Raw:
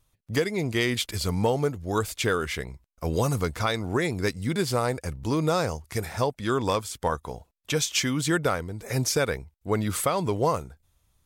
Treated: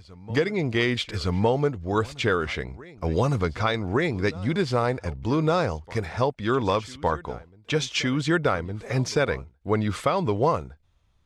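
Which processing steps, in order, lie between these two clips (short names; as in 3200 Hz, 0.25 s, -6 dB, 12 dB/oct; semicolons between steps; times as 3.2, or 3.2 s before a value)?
LPF 4000 Hz 12 dB/oct; reverse echo 1.161 s -20.5 dB; gain +2 dB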